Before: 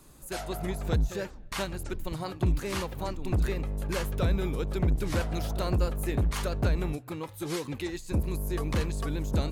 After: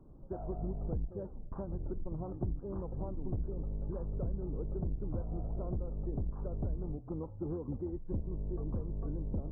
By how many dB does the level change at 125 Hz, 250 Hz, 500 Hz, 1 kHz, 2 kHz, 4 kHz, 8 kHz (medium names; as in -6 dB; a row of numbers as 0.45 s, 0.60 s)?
-8.0 dB, -7.0 dB, -8.5 dB, -14.0 dB, under -30 dB, under -40 dB, under -40 dB